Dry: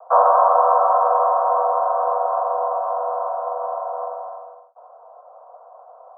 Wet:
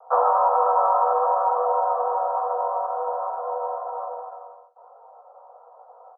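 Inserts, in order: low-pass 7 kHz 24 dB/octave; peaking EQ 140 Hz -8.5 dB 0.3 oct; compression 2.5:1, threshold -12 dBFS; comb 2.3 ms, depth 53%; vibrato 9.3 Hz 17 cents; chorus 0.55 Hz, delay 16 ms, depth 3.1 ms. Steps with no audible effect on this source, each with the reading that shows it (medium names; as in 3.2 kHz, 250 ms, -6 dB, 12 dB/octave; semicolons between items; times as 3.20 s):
low-pass 7 kHz: input has nothing above 1.4 kHz; peaking EQ 140 Hz: input has nothing below 400 Hz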